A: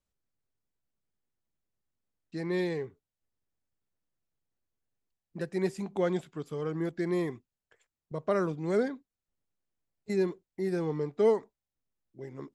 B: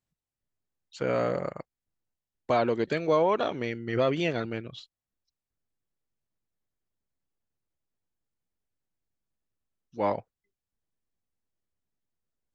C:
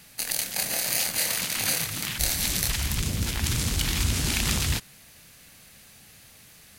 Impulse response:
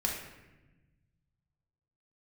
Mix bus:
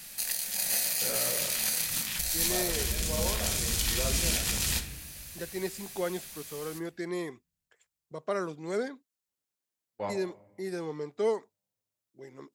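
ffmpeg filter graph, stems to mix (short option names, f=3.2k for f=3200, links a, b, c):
-filter_complex "[0:a]highpass=f=320:p=1,volume=-2dB,asplit=2[a][b];[1:a]agate=range=-35dB:threshold=-35dB:ratio=16:detection=peak,volume=-4dB,asplit=2[c][d];[d]volume=-17.5dB[e];[2:a]equalizer=f=110:w=3.4:g=-14,alimiter=limit=-15dB:level=0:latency=1:release=276,volume=1.5dB,asplit=2[f][g];[g]volume=-15dB[h];[b]apad=whole_len=553375[i];[c][i]sidechaincompress=threshold=-45dB:ratio=8:attack=16:release=1070[j];[j][f]amix=inputs=2:normalize=0,flanger=delay=7.3:depth=7.9:regen=-32:speed=1.5:shape=triangular,alimiter=level_in=2dB:limit=-24dB:level=0:latency=1:release=274,volume=-2dB,volume=0dB[k];[3:a]atrim=start_sample=2205[l];[e][h]amix=inputs=2:normalize=0[m];[m][l]afir=irnorm=-1:irlink=0[n];[a][k][n]amix=inputs=3:normalize=0,highshelf=f=3.7k:g=9"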